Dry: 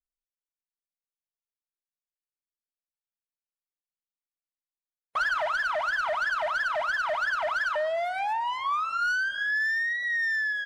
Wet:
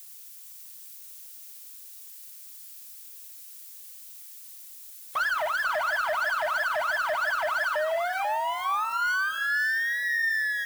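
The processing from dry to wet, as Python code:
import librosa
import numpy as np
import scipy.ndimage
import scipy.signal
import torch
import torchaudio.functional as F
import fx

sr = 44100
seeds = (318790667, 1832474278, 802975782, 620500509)

p1 = x + 0.5 * 10.0 ** (-37.0 / 20.0) * np.diff(np.sign(x), prepend=np.sign(x[:1]))
p2 = scipy.signal.sosfilt(scipy.signal.butter(2, 44.0, 'highpass', fs=sr, output='sos'), p1)
y = p2 + fx.echo_single(p2, sr, ms=491, db=-8.0, dry=0)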